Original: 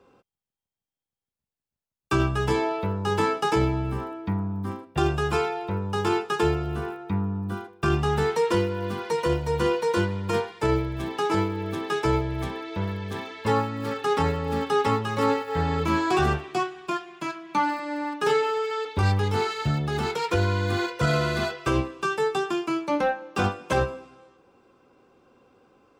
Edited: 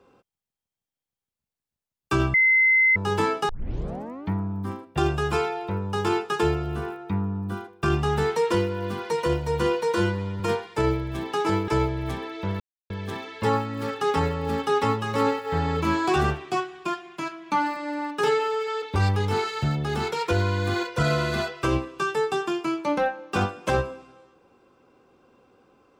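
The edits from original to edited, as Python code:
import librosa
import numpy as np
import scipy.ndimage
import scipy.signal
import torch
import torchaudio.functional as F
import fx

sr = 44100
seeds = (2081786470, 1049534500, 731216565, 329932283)

y = fx.edit(x, sr, fx.bleep(start_s=2.34, length_s=0.62, hz=2060.0, db=-15.0),
    fx.tape_start(start_s=3.49, length_s=0.83),
    fx.stretch_span(start_s=9.95, length_s=0.3, factor=1.5),
    fx.cut(start_s=11.53, length_s=0.48),
    fx.insert_silence(at_s=12.93, length_s=0.3), tone=tone)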